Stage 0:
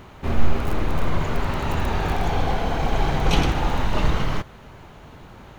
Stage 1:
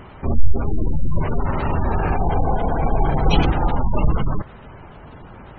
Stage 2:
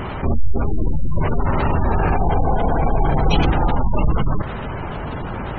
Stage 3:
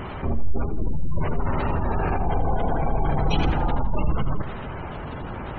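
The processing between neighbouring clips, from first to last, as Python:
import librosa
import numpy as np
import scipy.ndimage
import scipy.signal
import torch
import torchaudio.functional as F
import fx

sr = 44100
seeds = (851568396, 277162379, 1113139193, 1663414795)

y1 = fx.spec_gate(x, sr, threshold_db=-25, keep='strong')
y1 = F.gain(torch.from_numpy(y1), 3.5).numpy()
y2 = fx.env_flatten(y1, sr, amount_pct=50)
y2 = F.gain(torch.from_numpy(y2), -5.0).numpy()
y3 = fx.echo_feedback(y2, sr, ms=82, feedback_pct=40, wet_db=-12.0)
y3 = F.gain(torch.from_numpy(y3), -6.0).numpy()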